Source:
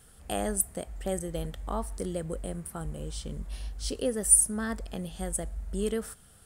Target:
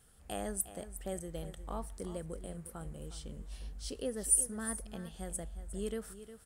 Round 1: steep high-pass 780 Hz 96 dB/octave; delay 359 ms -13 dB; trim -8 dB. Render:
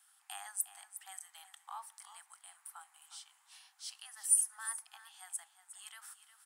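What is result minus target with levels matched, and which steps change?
1 kHz band -4.0 dB
remove: steep high-pass 780 Hz 96 dB/octave

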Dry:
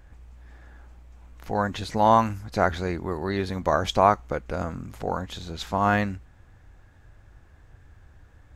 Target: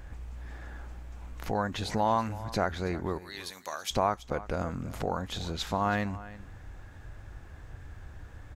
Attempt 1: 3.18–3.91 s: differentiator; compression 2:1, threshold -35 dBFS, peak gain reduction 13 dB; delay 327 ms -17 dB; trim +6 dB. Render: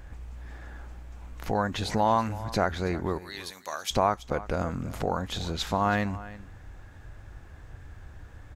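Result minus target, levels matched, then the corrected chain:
compression: peak gain reduction -3 dB
3.18–3.91 s: differentiator; compression 2:1, threshold -41 dBFS, peak gain reduction 16 dB; delay 327 ms -17 dB; trim +6 dB

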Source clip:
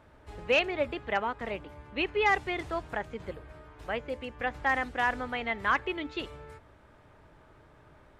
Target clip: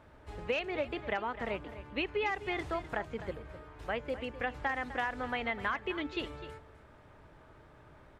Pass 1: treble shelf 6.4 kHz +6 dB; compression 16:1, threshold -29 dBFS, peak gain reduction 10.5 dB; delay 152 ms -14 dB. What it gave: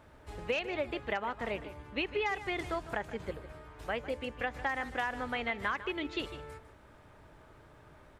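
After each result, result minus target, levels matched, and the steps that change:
echo 102 ms early; 8 kHz band +4.5 dB
change: delay 254 ms -14 dB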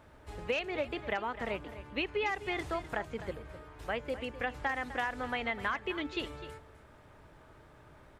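8 kHz band +4.5 dB
change: treble shelf 6.4 kHz -3 dB

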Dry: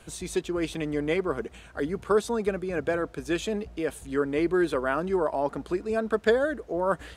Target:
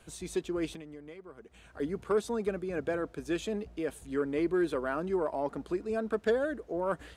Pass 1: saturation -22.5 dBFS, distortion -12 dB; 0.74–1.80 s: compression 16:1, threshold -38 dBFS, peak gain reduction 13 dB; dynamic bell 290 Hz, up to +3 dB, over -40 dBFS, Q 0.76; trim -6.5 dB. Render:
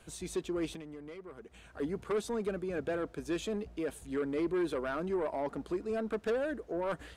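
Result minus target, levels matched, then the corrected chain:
saturation: distortion +14 dB
saturation -12 dBFS, distortion -25 dB; 0.74–1.80 s: compression 16:1, threshold -38 dBFS, peak gain reduction 17 dB; dynamic bell 290 Hz, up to +3 dB, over -40 dBFS, Q 0.76; trim -6.5 dB

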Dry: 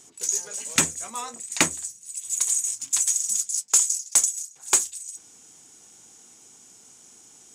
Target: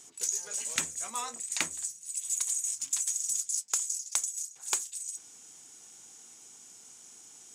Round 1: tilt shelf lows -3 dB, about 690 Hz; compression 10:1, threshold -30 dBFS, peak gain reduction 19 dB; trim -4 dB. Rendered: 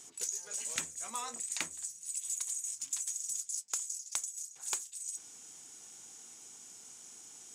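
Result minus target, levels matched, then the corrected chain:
compression: peak gain reduction +6.5 dB
tilt shelf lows -3 dB, about 690 Hz; compression 10:1, threshold -23 dBFS, peak gain reduction 12.5 dB; trim -4 dB

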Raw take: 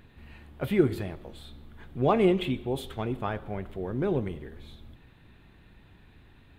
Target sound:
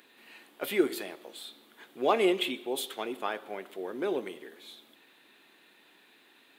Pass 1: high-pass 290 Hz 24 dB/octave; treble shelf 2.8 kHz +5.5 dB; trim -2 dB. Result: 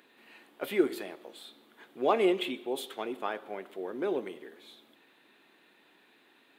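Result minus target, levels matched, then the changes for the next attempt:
4 kHz band -3.5 dB
change: treble shelf 2.8 kHz +13 dB

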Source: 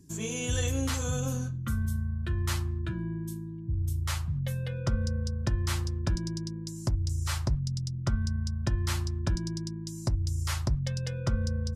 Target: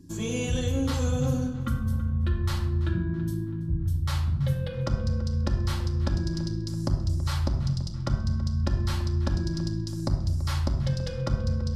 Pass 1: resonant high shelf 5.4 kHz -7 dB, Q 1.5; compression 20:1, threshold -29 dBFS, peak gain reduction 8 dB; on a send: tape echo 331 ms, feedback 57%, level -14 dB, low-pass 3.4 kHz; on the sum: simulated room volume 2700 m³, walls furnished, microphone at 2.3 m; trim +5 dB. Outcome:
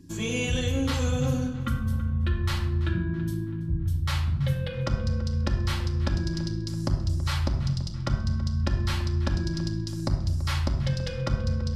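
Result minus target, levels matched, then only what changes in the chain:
2 kHz band +5.0 dB
add after compression: peaking EQ 2.4 kHz -7 dB 1.3 oct

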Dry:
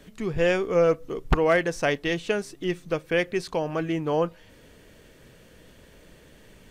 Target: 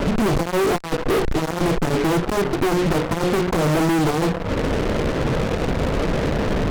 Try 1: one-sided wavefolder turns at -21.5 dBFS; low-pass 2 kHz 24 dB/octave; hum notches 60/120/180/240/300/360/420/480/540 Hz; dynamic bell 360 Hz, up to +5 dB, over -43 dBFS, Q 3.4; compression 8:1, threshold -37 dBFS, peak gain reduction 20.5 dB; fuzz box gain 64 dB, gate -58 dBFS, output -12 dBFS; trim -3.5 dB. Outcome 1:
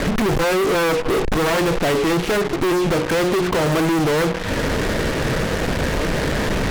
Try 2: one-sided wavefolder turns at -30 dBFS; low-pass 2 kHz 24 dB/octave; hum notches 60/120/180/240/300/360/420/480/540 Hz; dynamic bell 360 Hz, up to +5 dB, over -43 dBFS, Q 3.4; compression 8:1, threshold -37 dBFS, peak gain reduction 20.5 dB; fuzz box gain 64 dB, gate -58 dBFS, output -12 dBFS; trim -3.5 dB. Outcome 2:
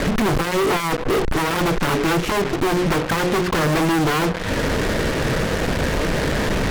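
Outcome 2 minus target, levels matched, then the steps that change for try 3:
2 kHz band +4.0 dB
change: low-pass 770 Hz 24 dB/octave

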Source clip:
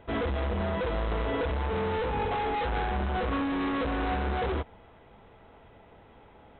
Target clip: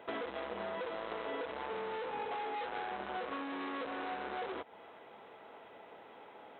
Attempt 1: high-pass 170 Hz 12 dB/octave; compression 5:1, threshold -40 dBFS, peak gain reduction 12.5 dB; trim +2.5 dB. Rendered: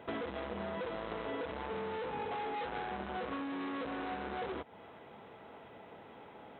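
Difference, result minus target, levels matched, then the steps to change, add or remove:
125 Hz band +9.5 dB
change: high-pass 360 Hz 12 dB/octave

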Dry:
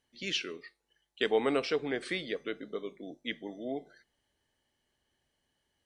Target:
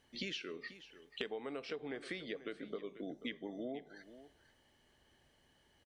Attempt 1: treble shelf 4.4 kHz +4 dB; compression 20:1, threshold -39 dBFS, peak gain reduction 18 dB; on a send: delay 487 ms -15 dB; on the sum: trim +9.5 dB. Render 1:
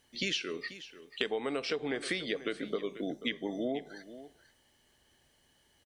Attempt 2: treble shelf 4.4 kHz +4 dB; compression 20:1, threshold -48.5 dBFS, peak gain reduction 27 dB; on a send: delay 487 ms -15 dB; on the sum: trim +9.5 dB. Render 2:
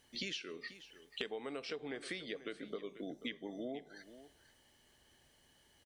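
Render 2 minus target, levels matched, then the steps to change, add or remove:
8 kHz band +5.0 dB
change: treble shelf 4.4 kHz -6.5 dB

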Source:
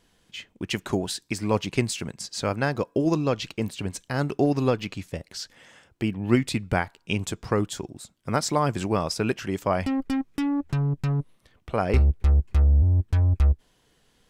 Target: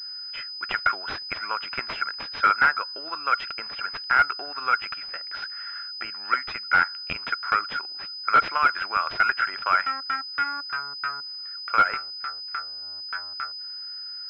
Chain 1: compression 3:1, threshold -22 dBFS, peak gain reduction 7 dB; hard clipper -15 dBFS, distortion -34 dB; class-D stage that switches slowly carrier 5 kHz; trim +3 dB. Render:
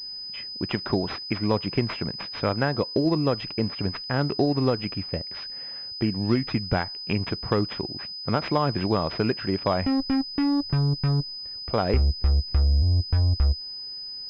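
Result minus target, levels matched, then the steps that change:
1 kHz band -8.0 dB
add after compression: resonant high-pass 1.4 kHz, resonance Q 16

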